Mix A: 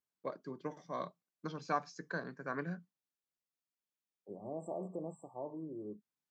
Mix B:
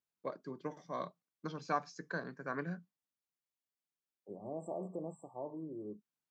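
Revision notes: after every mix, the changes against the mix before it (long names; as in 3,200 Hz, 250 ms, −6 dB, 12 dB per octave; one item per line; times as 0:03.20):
nothing changed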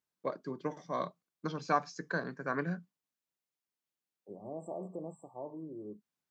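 first voice +5.0 dB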